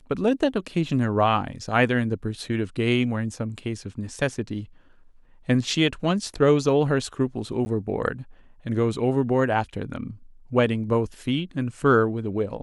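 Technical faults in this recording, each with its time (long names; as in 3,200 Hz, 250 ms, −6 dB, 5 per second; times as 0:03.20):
0:07.65–0:07.66: drop-out 10 ms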